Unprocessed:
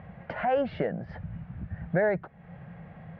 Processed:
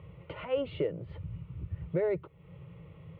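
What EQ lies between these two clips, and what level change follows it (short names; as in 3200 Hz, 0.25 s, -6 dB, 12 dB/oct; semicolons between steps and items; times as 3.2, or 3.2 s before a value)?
HPF 65 Hz; band shelf 1100 Hz -8.5 dB 2.4 oct; fixed phaser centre 1100 Hz, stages 8; +3.5 dB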